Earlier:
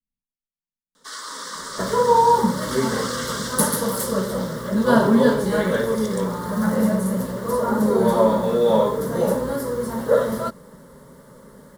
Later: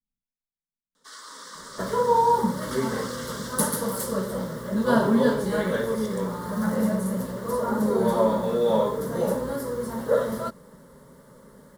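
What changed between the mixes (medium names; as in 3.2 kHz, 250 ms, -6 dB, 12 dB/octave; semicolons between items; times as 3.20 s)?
first sound -9.0 dB; second sound -4.5 dB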